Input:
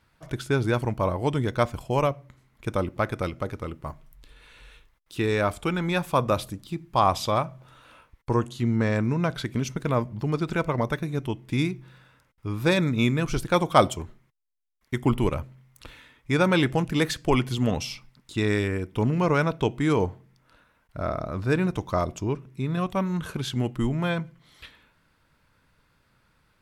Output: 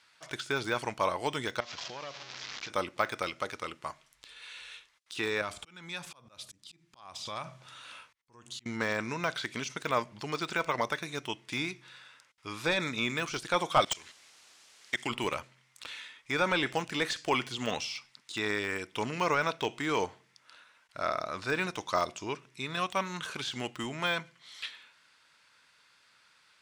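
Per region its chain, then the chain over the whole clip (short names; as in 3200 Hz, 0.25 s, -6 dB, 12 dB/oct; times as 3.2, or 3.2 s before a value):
1.6–2.7 delta modulation 32 kbps, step -36.5 dBFS + compressor 10:1, threshold -32 dBFS
5.41–8.66 compressor 16:1, threshold -29 dBFS + auto swell 0.545 s + tone controls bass +10 dB, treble +2 dB
13.8–15.1 band shelf 3700 Hz +11 dB 2.8 oct + level quantiser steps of 23 dB + added noise pink -61 dBFS
whole clip: weighting filter ITU-R 468; de-esser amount 85%; high shelf 8500 Hz -8 dB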